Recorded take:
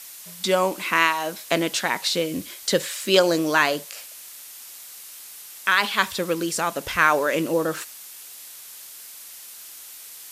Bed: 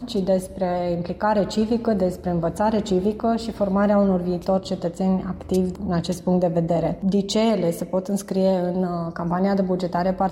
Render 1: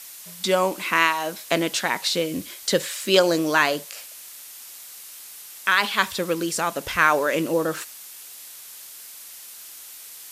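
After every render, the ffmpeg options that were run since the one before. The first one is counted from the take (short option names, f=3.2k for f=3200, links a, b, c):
-af anull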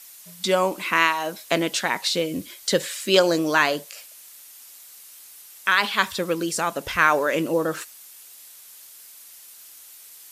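-af "afftdn=nr=6:nf=-42"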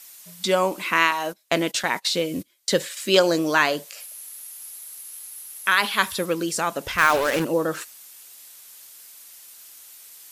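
-filter_complex "[0:a]asettb=1/sr,asplit=3[a][b][c];[a]atrim=end=1.114[d];[b]atrim=start=1.11:end=2.97,asetpts=PTS-STARTPTS,afade=t=in:d=0.004:c=qsin,afade=t=out:st=1.856:d=0.004:c=qsin,agate=range=-23dB:threshold=-33dB:ratio=16:release=100:detection=peak[e];[c]atrim=start=2.966[f];[d][e]acrossfade=d=0.004:c1=hsin:c2=qsin[g];[g][f]acrossfade=d=0.004:c1=qsin:c2=hsin,asettb=1/sr,asplit=3[h][i][j];[h]atrim=end=4.004[k];[i]atrim=start=4:end=6.26,asetpts=PTS-STARTPTS,afade=t=in:d=0.004:c=qsin,afade=t=out:st=2.256:d=0.004:c=qsin,equalizer=f=11k:w=4.5:g=15[l];[j]atrim=start=6.256[m];[k][l]acrossfade=d=0.004:c1=hsin:c2=qsin[n];[n][m]acrossfade=d=0.004:c1=qsin:c2=hsin,asettb=1/sr,asplit=3[o][p][q];[o]atrim=end=6.984[r];[p]atrim=start=6.98:end=7.45,asetpts=PTS-STARTPTS,afade=t=in:d=0.004:c=qsin,afade=t=out:st=0.466:d=0.004:c=qsin,acrusher=bits=3:mix=0:aa=0.5[s];[q]atrim=start=7.446[t];[r][s]acrossfade=d=0.004:c1=hsin:c2=qsin[u];[u][t]acrossfade=d=0.004:c1=qsin:c2=hsin"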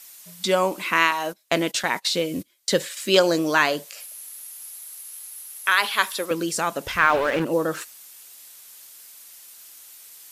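-filter_complex "[0:a]asettb=1/sr,asplit=3[a][b][c];[a]atrim=end=4.644[d];[b]atrim=start=4.64:end=6.31,asetpts=PTS-STARTPTS,afade=t=in:d=0.004:c=qsin,afade=t=out:st=1.666:d=0.004:c=qsin,highpass=380[e];[c]atrim=start=6.306[f];[d][e]acrossfade=d=0.004:c1=hsin:c2=qsin[g];[g][f]acrossfade=d=0.004:c1=qsin:c2=hsin,asettb=1/sr,asplit=3[h][i][j];[h]atrim=end=6.984[k];[i]atrim=start=6.98:end=7.52,asetpts=PTS-STARTPTS,afade=t=in:d=0.004:c=qsin,afade=t=out:st=0.536:d=0.004:c=qsin,acrossover=split=3400[l][m];[m]acompressor=threshold=-45dB:ratio=4:attack=1:release=60[n];[l][n]amix=inputs=2:normalize=0[o];[j]atrim=start=7.516[p];[k][o]acrossfade=d=0.004:c1=hsin:c2=qsin[q];[q][p]acrossfade=d=0.004:c1=qsin:c2=hsin"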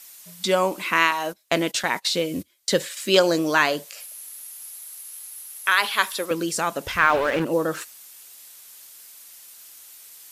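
-af "equalizer=f=82:t=o:w=0.38:g=4"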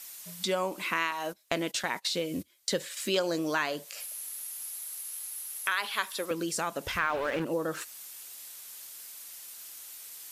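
-af "acompressor=threshold=-34dB:ratio=2"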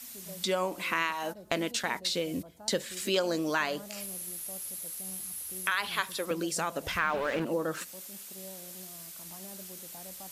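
-filter_complex "[1:a]volume=-28.5dB[a];[0:a][a]amix=inputs=2:normalize=0"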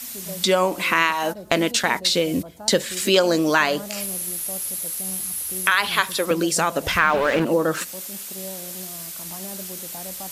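-af "volume=11dB,alimiter=limit=-3dB:level=0:latency=1"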